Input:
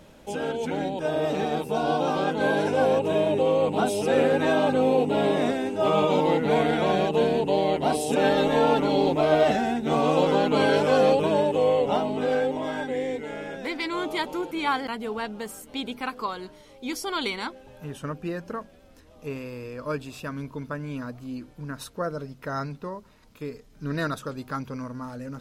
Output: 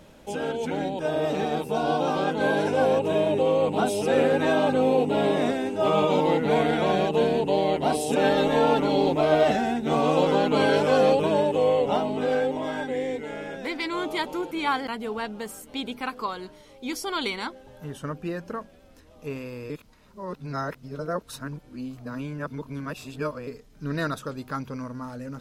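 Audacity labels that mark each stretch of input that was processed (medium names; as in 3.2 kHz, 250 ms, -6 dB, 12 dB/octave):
17.450000	18.170000	band-stop 2.5 kHz, Q 7.7
19.700000	23.470000	reverse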